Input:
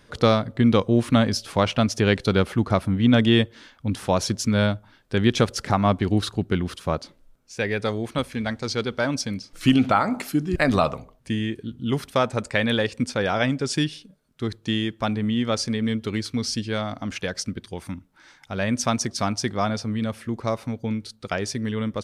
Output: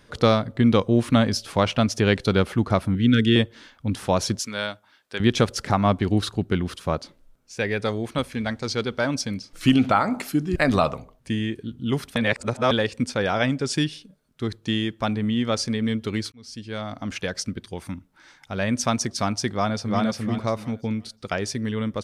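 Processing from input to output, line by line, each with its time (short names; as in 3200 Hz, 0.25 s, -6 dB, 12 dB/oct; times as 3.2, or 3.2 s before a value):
2.95–3.36 elliptic band-stop 460–1400 Hz
4.39–5.2 HPF 1100 Hz 6 dB/oct
12.16–12.71 reverse
16.32–17.11 fade in
19.5–20.03 echo throw 0.35 s, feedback 25%, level -1.5 dB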